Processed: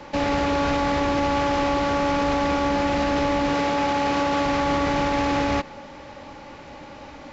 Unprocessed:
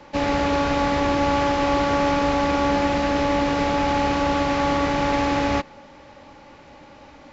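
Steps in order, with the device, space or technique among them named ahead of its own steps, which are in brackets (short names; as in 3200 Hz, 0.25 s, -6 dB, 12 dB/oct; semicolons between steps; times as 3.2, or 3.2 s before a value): 3.53–4.46 HPF 160 Hz 6 dB/oct; soft clipper into limiter (soft clip -11.5 dBFS, distortion -23 dB; limiter -20 dBFS, peak gain reduction 7 dB); gain +5 dB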